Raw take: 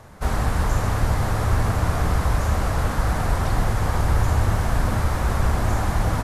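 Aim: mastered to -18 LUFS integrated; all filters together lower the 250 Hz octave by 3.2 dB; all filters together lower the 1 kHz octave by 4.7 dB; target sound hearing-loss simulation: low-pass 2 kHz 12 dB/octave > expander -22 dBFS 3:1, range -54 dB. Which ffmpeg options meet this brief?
-af "lowpass=2000,equalizer=f=250:t=o:g=-4.5,equalizer=f=1000:t=o:g=-5.5,agate=range=0.002:threshold=0.0794:ratio=3,volume=2"

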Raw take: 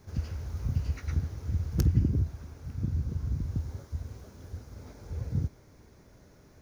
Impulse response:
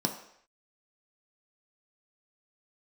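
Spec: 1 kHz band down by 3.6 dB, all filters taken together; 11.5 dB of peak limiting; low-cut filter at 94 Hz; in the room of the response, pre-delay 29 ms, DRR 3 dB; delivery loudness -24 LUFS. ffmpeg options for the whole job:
-filter_complex "[0:a]highpass=94,equalizer=f=1000:t=o:g=-5,alimiter=level_in=1.33:limit=0.0631:level=0:latency=1,volume=0.75,asplit=2[s0][s1];[1:a]atrim=start_sample=2205,adelay=29[s2];[s1][s2]afir=irnorm=-1:irlink=0,volume=0.335[s3];[s0][s3]amix=inputs=2:normalize=0,volume=3.55"

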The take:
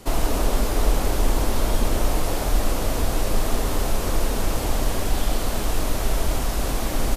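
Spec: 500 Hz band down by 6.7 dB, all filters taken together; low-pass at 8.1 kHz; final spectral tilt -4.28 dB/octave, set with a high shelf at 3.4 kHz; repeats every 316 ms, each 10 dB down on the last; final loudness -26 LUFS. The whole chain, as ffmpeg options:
-af "lowpass=8100,equalizer=f=500:t=o:g=-9,highshelf=f=3400:g=5.5,aecho=1:1:316|632|948|1264:0.316|0.101|0.0324|0.0104,volume=0.944"

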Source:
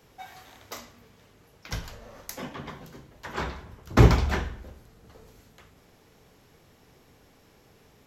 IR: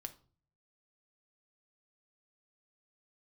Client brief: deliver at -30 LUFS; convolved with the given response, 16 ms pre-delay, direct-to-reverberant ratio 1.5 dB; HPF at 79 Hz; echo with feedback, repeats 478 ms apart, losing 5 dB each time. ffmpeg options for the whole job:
-filter_complex "[0:a]highpass=79,aecho=1:1:478|956|1434|1912|2390|2868|3346:0.562|0.315|0.176|0.0988|0.0553|0.031|0.0173,asplit=2[s0][s1];[1:a]atrim=start_sample=2205,adelay=16[s2];[s1][s2]afir=irnorm=-1:irlink=0,volume=1.33[s3];[s0][s3]amix=inputs=2:normalize=0,volume=0.531"

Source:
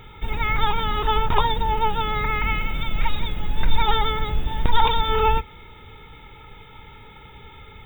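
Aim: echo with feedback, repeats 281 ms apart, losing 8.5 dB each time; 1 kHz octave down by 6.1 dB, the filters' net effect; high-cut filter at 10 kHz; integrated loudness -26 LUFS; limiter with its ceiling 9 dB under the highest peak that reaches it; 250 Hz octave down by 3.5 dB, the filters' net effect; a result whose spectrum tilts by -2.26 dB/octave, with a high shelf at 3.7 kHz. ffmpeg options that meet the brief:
-af "lowpass=10000,equalizer=f=250:t=o:g=-5,equalizer=f=1000:t=o:g=-7.5,highshelf=f=3700:g=3.5,alimiter=limit=0.2:level=0:latency=1,aecho=1:1:281|562|843|1124:0.376|0.143|0.0543|0.0206,volume=1.06"

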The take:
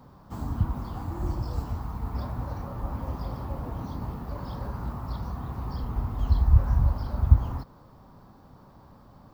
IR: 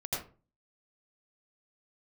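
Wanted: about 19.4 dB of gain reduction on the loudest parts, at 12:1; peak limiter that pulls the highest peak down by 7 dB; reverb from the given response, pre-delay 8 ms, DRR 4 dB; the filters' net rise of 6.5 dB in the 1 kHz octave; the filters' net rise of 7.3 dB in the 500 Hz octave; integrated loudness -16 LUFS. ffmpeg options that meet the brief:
-filter_complex "[0:a]equalizer=f=500:t=o:g=7.5,equalizer=f=1000:t=o:g=5.5,acompressor=threshold=0.0398:ratio=12,alimiter=level_in=1.26:limit=0.0631:level=0:latency=1,volume=0.794,asplit=2[s0][s1];[1:a]atrim=start_sample=2205,adelay=8[s2];[s1][s2]afir=irnorm=-1:irlink=0,volume=0.398[s3];[s0][s3]amix=inputs=2:normalize=0,volume=8.41"

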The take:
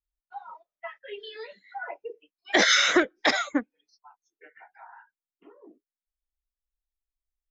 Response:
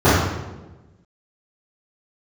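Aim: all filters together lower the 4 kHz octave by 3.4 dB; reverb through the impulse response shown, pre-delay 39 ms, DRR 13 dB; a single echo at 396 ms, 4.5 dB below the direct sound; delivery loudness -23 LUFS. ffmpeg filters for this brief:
-filter_complex "[0:a]equalizer=f=4000:t=o:g=-4,aecho=1:1:396:0.596,asplit=2[s0][s1];[1:a]atrim=start_sample=2205,adelay=39[s2];[s1][s2]afir=irnorm=-1:irlink=0,volume=0.00944[s3];[s0][s3]amix=inputs=2:normalize=0,volume=1.06"

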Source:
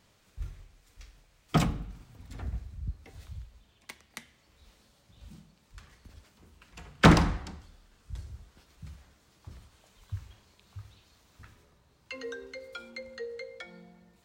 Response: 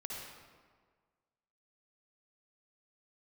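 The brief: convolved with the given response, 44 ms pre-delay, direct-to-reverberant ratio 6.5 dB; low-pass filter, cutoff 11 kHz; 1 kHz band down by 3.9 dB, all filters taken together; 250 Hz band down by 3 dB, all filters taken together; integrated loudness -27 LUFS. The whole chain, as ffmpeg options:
-filter_complex "[0:a]lowpass=11000,equalizer=f=250:t=o:g=-4.5,equalizer=f=1000:t=o:g=-5,asplit=2[s0][s1];[1:a]atrim=start_sample=2205,adelay=44[s2];[s1][s2]afir=irnorm=-1:irlink=0,volume=0.501[s3];[s0][s3]amix=inputs=2:normalize=0,volume=1.88"

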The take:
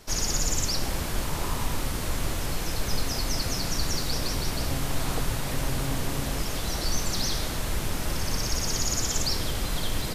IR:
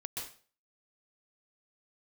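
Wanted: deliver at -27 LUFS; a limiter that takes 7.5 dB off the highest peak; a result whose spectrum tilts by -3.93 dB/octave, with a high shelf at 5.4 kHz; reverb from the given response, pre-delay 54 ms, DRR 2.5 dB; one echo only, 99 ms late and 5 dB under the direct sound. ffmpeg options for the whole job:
-filter_complex "[0:a]highshelf=f=5400:g=-8.5,alimiter=limit=0.0841:level=0:latency=1,aecho=1:1:99:0.562,asplit=2[s0][s1];[1:a]atrim=start_sample=2205,adelay=54[s2];[s1][s2]afir=irnorm=-1:irlink=0,volume=0.75[s3];[s0][s3]amix=inputs=2:normalize=0,volume=1.5"

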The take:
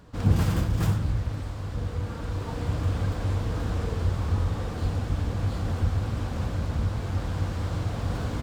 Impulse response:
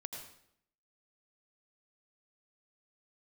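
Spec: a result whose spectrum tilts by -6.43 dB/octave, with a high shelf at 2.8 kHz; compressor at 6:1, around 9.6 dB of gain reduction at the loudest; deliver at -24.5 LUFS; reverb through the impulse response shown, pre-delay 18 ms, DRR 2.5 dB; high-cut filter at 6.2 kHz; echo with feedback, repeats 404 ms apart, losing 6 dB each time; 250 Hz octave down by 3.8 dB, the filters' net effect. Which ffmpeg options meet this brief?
-filter_complex "[0:a]lowpass=6200,equalizer=f=250:t=o:g=-6,highshelf=f=2800:g=5.5,acompressor=threshold=0.0447:ratio=6,aecho=1:1:404|808|1212|1616|2020|2424:0.501|0.251|0.125|0.0626|0.0313|0.0157,asplit=2[s0][s1];[1:a]atrim=start_sample=2205,adelay=18[s2];[s1][s2]afir=irnorm=-1:irlink=0,volume=0.944[s3];[s0][s3]amix=inputs=2:normalize=0,volume=1.88"

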